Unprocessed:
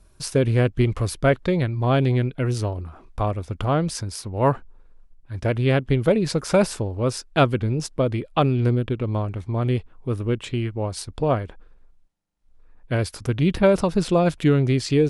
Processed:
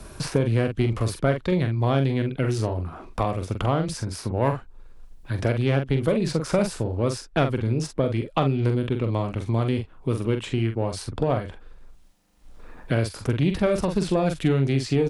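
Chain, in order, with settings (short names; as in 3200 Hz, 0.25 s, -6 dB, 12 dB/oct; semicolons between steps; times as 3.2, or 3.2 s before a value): one diode to ground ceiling -8.5 dBFS; doubler 44 ms -7 dB; three-band squash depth 70%; gain -2.5 dB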